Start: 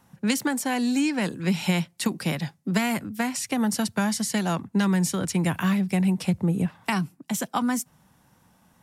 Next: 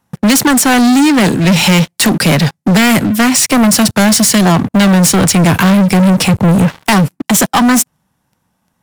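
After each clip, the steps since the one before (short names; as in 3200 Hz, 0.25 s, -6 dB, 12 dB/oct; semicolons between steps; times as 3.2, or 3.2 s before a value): sample leveller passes 5; gain +6 dB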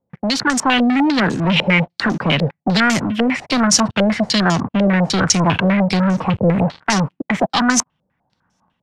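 AGC gain up to 12 dB; stepped low-pass 10 Hz 520–6100 Hz; gain -12.5 dB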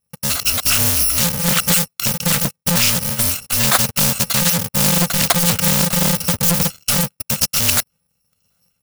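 FFT order left unsorted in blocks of 128 samples; Doppler distortion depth 0.91 ms; gain +1 dB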